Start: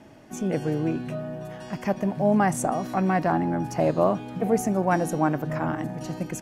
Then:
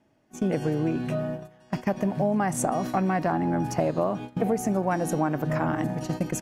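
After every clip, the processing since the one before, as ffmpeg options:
ffmpeg -i in.wav -af "agate=range=-21dB:threshold=-33dB:ratio=16:detection=peak,acompressor=threshold=-26dB:ratio=6,volume=4.5dB" out.wav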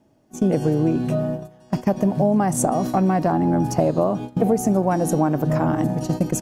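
ffmpeg -i in.wav -af "equalizer=frequency=2000:width=0.83:gain=-9.5,volume=7dB" out.wav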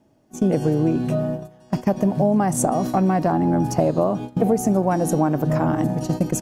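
ffmpeg -i in.wav -af anull out.wav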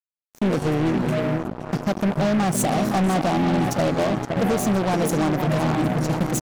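ffmpeg -i in.wav -filter_complex "[0:a]asplit=2[link_01][link_02];[link_02]adelay=518,lowpass=frequency=3300:poles=1,volume=-8dB,asplit=2[link_03][link_04];[link_04]adelay=518,lowpass=frequency=3300:poles=1,volume=0.5,asplit=2[link_05][link_06];[link_06]adelay=518,lowpass=frequency=3300:poles=1,volume=0.5,asplit=2[link_07][link_08];[link_08]adelay=518,lowpass=frequency=3300:poles=1,volume=0.5,asplit=2[link_09][link_10];[link_10]adelay=518,lowpass=frequency=3300:poles=1,volume=0.5,asplit=2[link_11][link_12];[link_12]adelay=518,lowpass=frequency=3300:poles=1,volume=0.5[link_13];[link_01][link_03][link_05][link_07][link_09][link_11][link_13]amix=inputs=7:normalize=0,asoftclip=type=tanh:threshold=-17dB,acrusher=bits=3:mix=0:aa=0.5" out.wav

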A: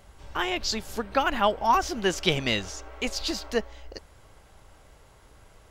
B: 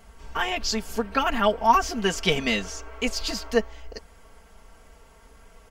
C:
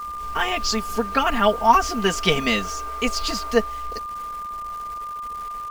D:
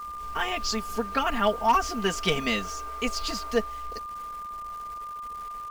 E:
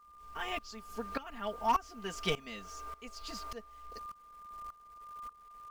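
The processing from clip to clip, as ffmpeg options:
ffmpeg -i in.wav -af "equalizer=frequency=3800:width_type=o:width=0.21:gain=-6,aecho=1:1:4.4:0.81" out.wav
ffmpeg -i in.wav -af "acrusher=bits=7:mix=0:aa=0.000001,aeval=exprs='val(0)+0.0251*sin(2*PI*1200*n/s)':channel_layout=same,volume=3dB" out.wav
ffmpeg -i in.wav -af "volume=8.5dB,asoftclip=hard,volume=-8.5dB,volume=-5.5dB" out.wav
ffmpeg -i in.wav -af "aeval=exprs='val(0)*pow(10,-18*if(lt(mod(-1.7*n/s,1),2*abs(-1.7)/1000),1-mod(-1.7*n/s,1)/(2*abs(-1.7)/1000),(mod(-1.7*n/s,1)-2*abs(-1.7)/1000)/(1-2*abs(-1.7)/1000))/20)':channel_layout=same,volume=-5.5dB" out.wav

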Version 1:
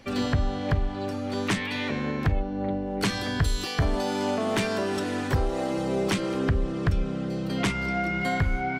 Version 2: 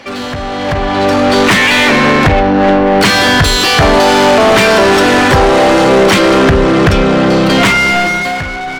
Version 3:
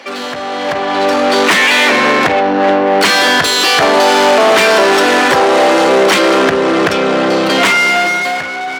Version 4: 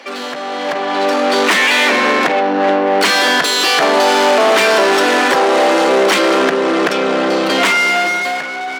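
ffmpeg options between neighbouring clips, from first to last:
ffmpeg -i in.wav -filter_complex "[0:a]asplit=2[link_01][link_02];[link_02]highpass=frequency=720:poles=1,volume=26dB,asoftclip=type=tanh:threshold=-15.5dB[link_03];[link_01][link_03]amix=inputs=2:normalize=0,lowpass=frequency=3200:poles=1,volume=-6dB,dynaudnorm=framelen=100:gausssize=17:maxgain=14dB,volume=2dB" out.wav
ffmpeg -i in.wav -filter_complex "[0:a]highpass=320,asplit=2[link_01][link_02];[link_02]asoftclip=type=tanh:threshold=-13dB,volume=-12dB[link_03];[link_01][link_03]amix=inputs=2:normalize=0,volume=-1.5dB" out.wav
ffmpeg -i in.wav -af "highpass=frequency=190:width=0.5412,highpass=frequency=190:width=1.3066,volume=-2.5dB" out.wav

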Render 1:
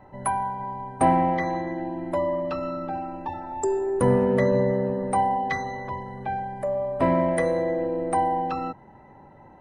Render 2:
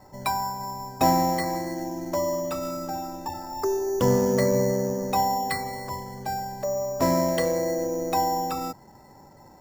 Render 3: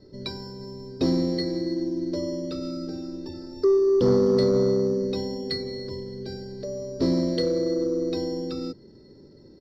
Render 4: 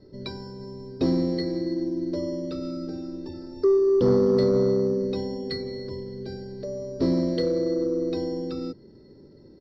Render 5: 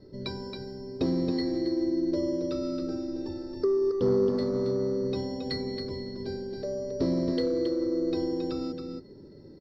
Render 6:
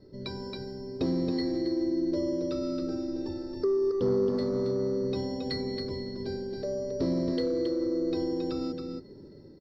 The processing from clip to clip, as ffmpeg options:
ffmpeg -i in.wav -af "acrusher=samples=7:mix=1:aa=0.000001,volume=-1dB" out.wav
ffmpeg -i in.wav -af "firequalizer=gain_entry='entry(140,0);entry(410,9);entry(790,-25);entry(1400,-10);entry(2500,-10);entry(4400,9);entry(6800,-20);entry(12000,-29)':delay=0.05:min_phase=1,asoftclip=type=tanh:threshold=-12.5dB" out.wav
ffmpeg -i in.wav -af "highshelf=frequency=5400:gain=-11" out.wav
ffmpeg -i in.wav -filter_complex "[0:a]acompressor=threshold=-25dB:ratio=3,asplit=2[link_01][link_02];[link_02]aecho=0:1:273:0.501[link_03];[link_01][link_03]amix=inputs=2:normalize=0" out.wav
ffmpeg -i in.wav -filter_complex "[0:a]asplit=2[link_01][link_02];[link_02]alimiter=level_in=0.5dB:limit=-24dB:level=0:latency=1,volume=-0.5dB,volume=-1dB[link_03];[link_01][link_03]amix=inputs=2:normalize=0,dynaudnorm=framelen=140:gausssize=5:maxgain=3dB,volume=-8dB" out.wav

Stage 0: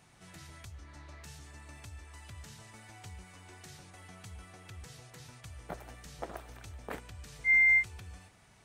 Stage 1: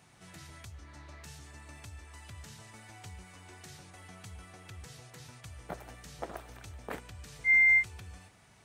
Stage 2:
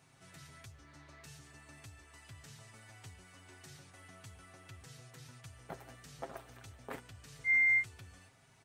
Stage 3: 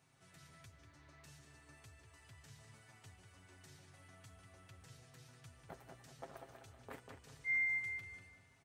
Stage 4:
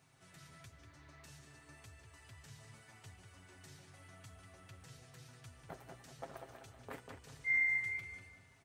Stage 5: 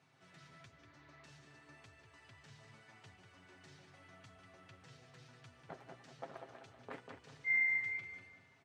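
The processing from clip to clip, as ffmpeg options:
ffmpeg -i in.wav -af "highpass=54,volume=1dB" out.wav
ffmpeg -i in.wav -af "aecho=1:1:7.5:0.57,volume=-5.5dB" out.wav
ffmpeg -i in.wav -filter_complex "[0:a]asplit=2[link_01][link_02];[link_02]adelay=193,lowpass=frequency=3000:poles=1,volume=-5dB,asplit=2[link_03][link_04];[link_04]adelay=193,lowpass=frequency=3000:poles=1,volume=0.37,asplit=2[link_05][link_06];[link_06]adelay=193,lowpass=frequency=3000:poles=1,volume=0.37,asplit=2[link_07][link_08];[link_08]adelay=193,lowpass=frequency=3000:poles=1,volume=0.37,asplit=2[link_09][link_10];[link_10]adelay=193,lowpass=frequency=3000:poles=1,volume=0.37[link_11];[link_01][link_03][link_05][link_07][link_09][link_11]amix=inputs=6:normalize=0,volume=-7dB" out.wav
ffmpeg -i in.wav -af "flanger=delay=0.4:depth=7.1:regen=-75:speed=0.95:shape=triangular,volume=7.5dB" out.wav
ffmpeg -i in.wav -af "highpass=140,lowpass=4700" out.wav

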